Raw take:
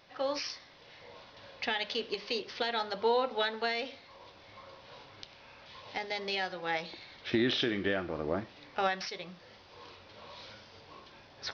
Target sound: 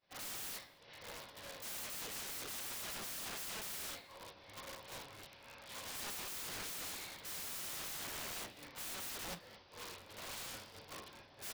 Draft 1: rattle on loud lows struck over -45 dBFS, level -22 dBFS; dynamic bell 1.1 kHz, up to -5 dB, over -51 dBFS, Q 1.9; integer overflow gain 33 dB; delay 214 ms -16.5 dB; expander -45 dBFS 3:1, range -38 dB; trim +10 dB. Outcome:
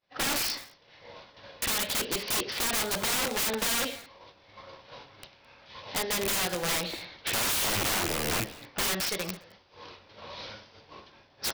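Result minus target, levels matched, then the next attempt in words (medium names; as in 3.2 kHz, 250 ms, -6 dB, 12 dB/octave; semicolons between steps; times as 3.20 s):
integer overflow: distortion -11 dB
rattle on loud lows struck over -45 dBFS, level -22 dBFS; dynamic bell 1.1 kHz, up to -5 dB, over -51 dBFS, Q 1.9; integer overflow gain 45 dB; delay 214 ms -16.5 dB; expander -45 dBFS 3:1, range -38 dB; trim +10 dB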